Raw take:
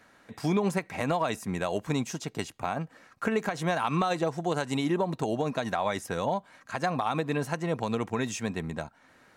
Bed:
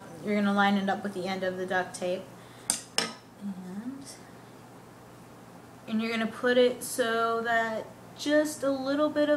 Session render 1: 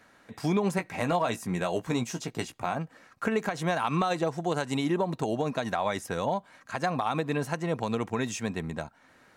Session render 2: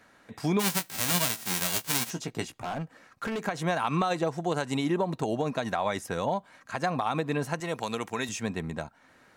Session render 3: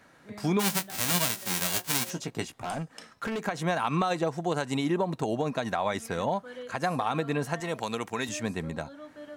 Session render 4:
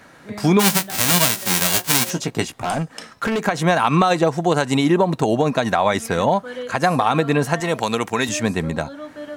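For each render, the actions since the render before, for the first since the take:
0.77–2.77 doubler 17 ms -7.5 dB
0.59–2.09 spectral whitening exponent 0.1; 2.61–3.45 hard clip -29 dBFS; 7.6–8.29 tilt +2.5 dB/oct
add bed -19.5 dB
gain +11 dB; limiter -1 dBFS, peak gain reduction 2.5 dB

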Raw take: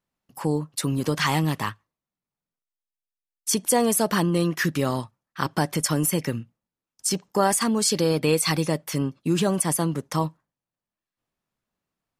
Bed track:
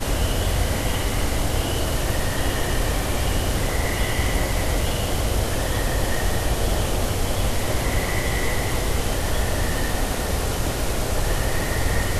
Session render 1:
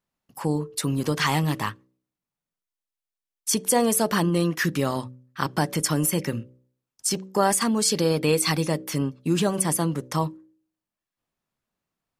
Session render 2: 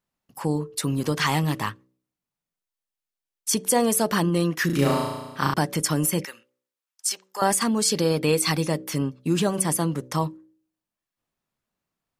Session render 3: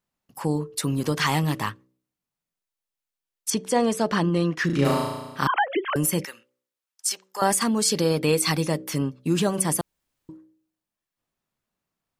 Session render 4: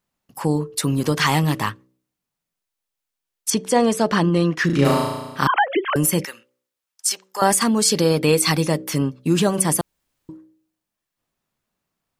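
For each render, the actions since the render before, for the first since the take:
de-hum 63.27 Hz, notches 9
4.66–5.54 flutter echo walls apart 6.1 m, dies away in 1.1 s; 6.25–7.42 HPF 1100 Hz
3.5–4.85 air absorption 81 m; 5.47–5.96 sine-wave speech; 9.81–10.29 room tone
gain +4.5 dB

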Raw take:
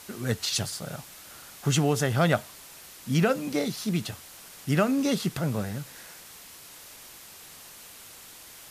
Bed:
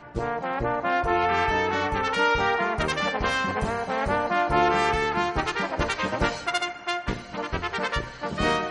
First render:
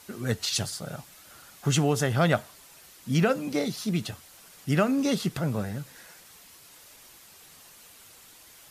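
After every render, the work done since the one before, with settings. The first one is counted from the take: denoiser 6 dB, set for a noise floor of -48 dBFS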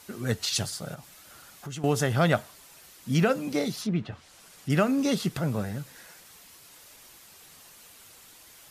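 0.94–1.84 compressor 2.5:1, threshold -41 dBFS; 3.81–4.7 treble ducked by the level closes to 2000 Hz, closed at -27 dBFS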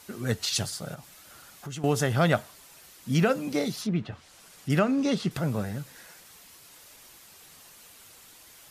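4.79–5.31 air absorption 65 m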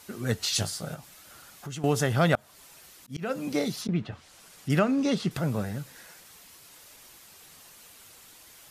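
0.4–0.97 doubler 19 ms -7 dB; 2.35–3.89 auto swell 0.27 s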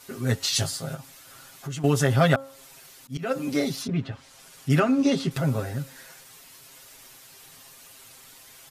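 comb 7.5 ms, depth 93%; de-hum 271 Hz, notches 5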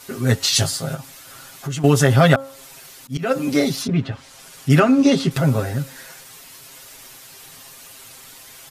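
gain +7 dB; limiter -2 dBFS, peak gain reduction 2 dB

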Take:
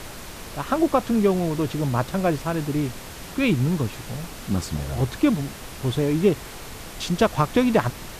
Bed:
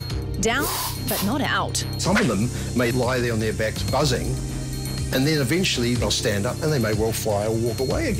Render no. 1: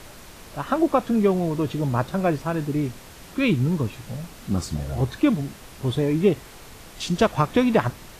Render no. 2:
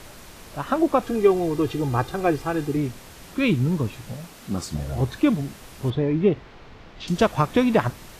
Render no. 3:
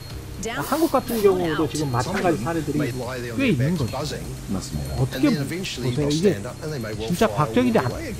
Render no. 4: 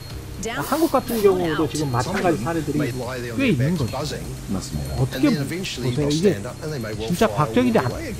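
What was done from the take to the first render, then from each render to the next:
noise print and reduce 6 dB
1.02–2.77 comb 2.5 ms; 4.13–4.74 low shelf 120 Hz -10.5 dB; 5.9–7.08 air absorption 230 m
add bed -7.5 dB
gain +1 dB

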